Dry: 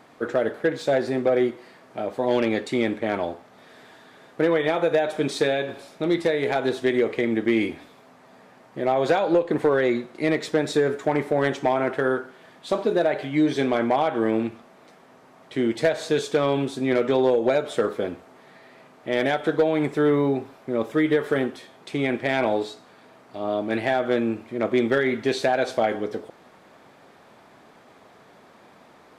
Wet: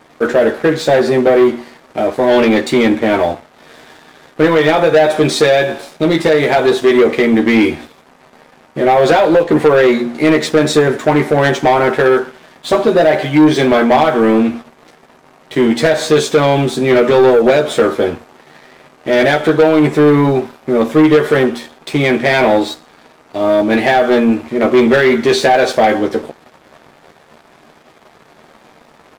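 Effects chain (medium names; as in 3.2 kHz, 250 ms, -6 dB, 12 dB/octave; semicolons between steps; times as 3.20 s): doubling 13 ms -3.5 dB; de-hum 118.8 Hz, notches 3; waveshaping leveller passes 2; trim +5 dB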